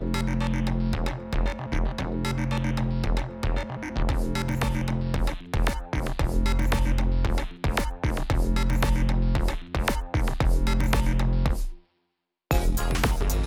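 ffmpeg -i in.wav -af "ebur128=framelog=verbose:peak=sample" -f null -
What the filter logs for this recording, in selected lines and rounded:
Integrated loudness:
  I:         -27.3 LUFS
  Threshold: -37.4 LUFS
Loudness range:
  LRA:         2.5 LU
  Threshold: -47.4 LUFS
  LRA low:   -28.6 LUFS
  LRA high:  -26.1 LUFS
Sample peak:
  Peak:       -9.2 dBFS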